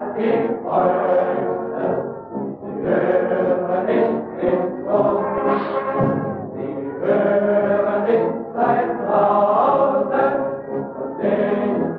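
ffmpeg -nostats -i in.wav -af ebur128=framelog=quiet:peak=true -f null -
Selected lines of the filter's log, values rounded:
Integrated loudness:
  I:         -19.6 LUFS
  Threshold: -29.6 LUFS
Loudness range:
  LRA:         3.1 LU
  Threshold: -39.5 LUFS
  LRA low:   -20.8 LUFS
  LRA high:  -17.7 LUFS
True peak:
  Peak:       -4.7 dBFS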